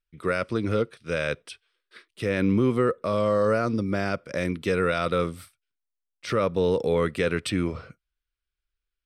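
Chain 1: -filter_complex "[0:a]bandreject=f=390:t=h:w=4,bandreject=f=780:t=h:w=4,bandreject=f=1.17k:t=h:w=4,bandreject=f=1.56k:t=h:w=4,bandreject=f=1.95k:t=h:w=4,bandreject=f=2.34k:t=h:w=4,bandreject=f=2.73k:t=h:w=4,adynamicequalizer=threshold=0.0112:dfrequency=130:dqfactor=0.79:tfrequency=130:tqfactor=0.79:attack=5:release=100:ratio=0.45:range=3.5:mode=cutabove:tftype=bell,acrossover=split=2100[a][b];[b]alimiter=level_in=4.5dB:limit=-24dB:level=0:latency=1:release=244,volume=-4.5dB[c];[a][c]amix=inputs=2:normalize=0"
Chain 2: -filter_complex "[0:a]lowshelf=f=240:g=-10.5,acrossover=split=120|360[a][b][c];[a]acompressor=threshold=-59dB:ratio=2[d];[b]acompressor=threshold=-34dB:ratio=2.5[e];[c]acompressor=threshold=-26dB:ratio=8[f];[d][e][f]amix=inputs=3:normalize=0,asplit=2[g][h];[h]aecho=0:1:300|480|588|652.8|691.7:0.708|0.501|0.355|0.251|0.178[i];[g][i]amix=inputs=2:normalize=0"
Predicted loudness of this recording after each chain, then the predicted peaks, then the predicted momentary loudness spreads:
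-27.0, -28.5 LUFS; -13.5, -14.0 dBFS; 8, 10 LU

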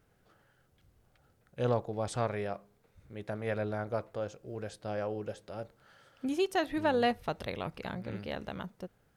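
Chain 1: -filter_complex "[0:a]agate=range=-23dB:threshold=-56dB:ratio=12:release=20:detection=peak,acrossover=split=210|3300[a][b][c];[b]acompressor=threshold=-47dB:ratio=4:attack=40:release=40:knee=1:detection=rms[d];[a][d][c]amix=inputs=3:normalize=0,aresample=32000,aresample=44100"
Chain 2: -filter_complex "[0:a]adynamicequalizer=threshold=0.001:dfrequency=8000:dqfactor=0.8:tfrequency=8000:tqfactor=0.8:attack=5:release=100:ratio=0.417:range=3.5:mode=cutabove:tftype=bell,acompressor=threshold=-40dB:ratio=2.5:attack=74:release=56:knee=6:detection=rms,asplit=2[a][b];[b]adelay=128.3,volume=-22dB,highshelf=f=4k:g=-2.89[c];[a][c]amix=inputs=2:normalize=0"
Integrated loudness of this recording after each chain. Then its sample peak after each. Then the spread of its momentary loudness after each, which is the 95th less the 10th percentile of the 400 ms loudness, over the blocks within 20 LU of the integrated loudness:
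-42.0, -40.0 LUFS; -24.0, -23.5 dBFS; 9, 9 LU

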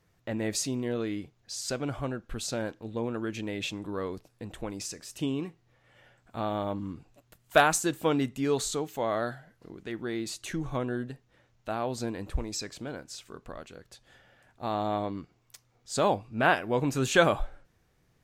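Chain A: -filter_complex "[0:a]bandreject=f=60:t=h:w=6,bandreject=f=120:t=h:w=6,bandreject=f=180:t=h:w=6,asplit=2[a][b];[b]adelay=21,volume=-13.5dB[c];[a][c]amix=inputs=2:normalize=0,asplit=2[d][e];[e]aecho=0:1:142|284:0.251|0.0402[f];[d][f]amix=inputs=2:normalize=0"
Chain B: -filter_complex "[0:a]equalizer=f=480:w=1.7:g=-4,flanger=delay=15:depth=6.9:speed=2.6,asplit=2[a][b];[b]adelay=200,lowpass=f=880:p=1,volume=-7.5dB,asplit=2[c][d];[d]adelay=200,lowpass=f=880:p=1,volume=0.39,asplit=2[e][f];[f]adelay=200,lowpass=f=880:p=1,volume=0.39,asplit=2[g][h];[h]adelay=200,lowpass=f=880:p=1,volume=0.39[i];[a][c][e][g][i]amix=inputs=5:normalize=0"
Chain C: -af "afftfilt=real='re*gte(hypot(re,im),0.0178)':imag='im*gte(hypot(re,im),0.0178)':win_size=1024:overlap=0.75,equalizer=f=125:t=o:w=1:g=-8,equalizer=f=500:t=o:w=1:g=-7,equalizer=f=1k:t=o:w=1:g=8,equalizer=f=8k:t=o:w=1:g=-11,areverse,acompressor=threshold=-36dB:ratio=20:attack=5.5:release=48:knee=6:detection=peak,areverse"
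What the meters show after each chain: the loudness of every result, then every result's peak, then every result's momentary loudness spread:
-30.5, -34.5, -41.5 LUFS; -7.5, -11.0, -25.0 dBFS; 18, 18, 9 LU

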